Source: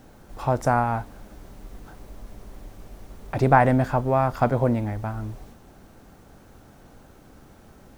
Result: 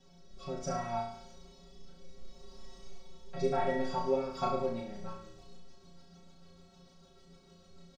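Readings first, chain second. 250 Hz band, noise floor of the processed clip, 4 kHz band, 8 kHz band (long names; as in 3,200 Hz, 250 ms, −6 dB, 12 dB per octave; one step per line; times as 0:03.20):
−14.0 dB, −60 dBFS, −0.5 dB, can't be measured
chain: high shelf with overshoot 2,900 Hz +13 dB, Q 1.5
comb filter 5.3 ms, depth 80%
rotating-speaker cabinet horn 0.65 Hz, later 6.7 Hz, at 0:03.87
high-frequency loss of the air 160 metres
stiff-string resonator 81 Hz, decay 0.48 s, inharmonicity 0.03
on a send: flutter between parallel walls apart 5.9 metres, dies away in 0.65 s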